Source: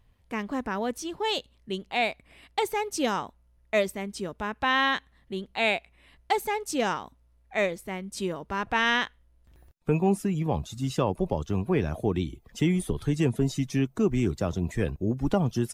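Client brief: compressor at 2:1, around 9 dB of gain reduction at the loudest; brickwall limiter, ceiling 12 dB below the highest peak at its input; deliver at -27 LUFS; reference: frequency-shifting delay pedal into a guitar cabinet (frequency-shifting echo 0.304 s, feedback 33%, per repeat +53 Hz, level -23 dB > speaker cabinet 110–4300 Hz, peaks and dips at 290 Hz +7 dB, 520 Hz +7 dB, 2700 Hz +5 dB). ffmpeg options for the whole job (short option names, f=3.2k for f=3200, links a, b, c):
-filter_complex "[0:a]acompressor=threshold=-36dB:ratio=2,alimiter=level_in=7.5dB:limit=-24dB:level=0:latency=1,volume=-7.5dB,asplit=3[a][b][c];[b]adelay=304,afreqshift=53,volume=-23dB[d];[c]adelay=608,afreqshift=106,volume=-32.6dB[e];[a][d][e]amix=inputs=3:normalize=0,highpass=110,equalizer=f=290:t=q:w=4:g=7,equalizer=f=520:t=q:w=4:g=7,equalizer=f=2.7k:t=q:w=4:g=5,lowpass=f=4.3k:w=0.5412,lowpass=f=4.3k:w=1.3066,volume=13dB"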